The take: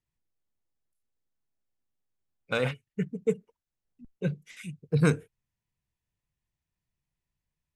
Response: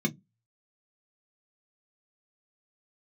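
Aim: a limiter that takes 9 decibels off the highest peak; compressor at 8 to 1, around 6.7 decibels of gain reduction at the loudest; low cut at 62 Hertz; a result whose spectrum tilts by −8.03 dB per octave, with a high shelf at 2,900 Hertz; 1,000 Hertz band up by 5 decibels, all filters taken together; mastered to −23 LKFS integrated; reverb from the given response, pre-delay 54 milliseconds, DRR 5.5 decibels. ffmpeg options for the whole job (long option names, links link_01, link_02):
-filter_complex "[0:a]highpass=62,equalizer=frequency=1000:width_type=o:gain=5.5,highshelf=frequency=2900:gain=8,acompressor=threshold=-23dB:ratio=8,alimiter=limit=-20.5dB:level=0:latency=1,asplit=2[link_01][link_02];[1:a]atrim=start_sample=2205,adelay=54[link_03];[link_02][link_03]afir=irnorm=-1:irlink=0,volume=-12dB[link_04];[link_01][link_04]amix=inputs=2:normalize=0,volume=5.5dB"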